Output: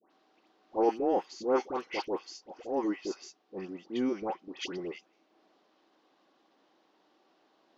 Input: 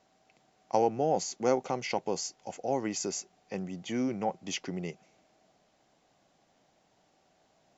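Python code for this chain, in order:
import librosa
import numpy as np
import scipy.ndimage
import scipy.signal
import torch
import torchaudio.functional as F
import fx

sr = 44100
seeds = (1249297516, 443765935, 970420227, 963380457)

y = fx.cabinet(x, sr, low_hz=250.0, low_slope=24, high_hz=4700.0, hz=(330.0, 670.0, 1100.0, 2200.0), db=(7, -7, 5, -4))
y = fx.transient(y, sr, attack_db=-10, sustain_db=-6)
y = fx.dispersion(y, sr, late='highs', ms=109.0, hz=1400.0)
y = F.gain(torch.from_numpy(y), 2.5).numpy()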